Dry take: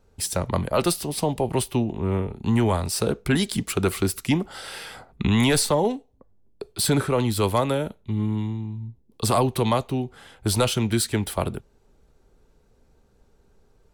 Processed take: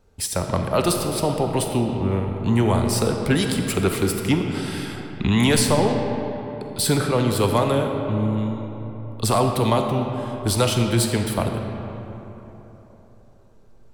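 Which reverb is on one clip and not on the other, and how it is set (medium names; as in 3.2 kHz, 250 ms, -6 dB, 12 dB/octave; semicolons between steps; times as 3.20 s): algorithmic reverb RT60 3.7 s, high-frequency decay 0.5×, pre-delay 5 ms, DRR 3.5 dB; trim +1 dB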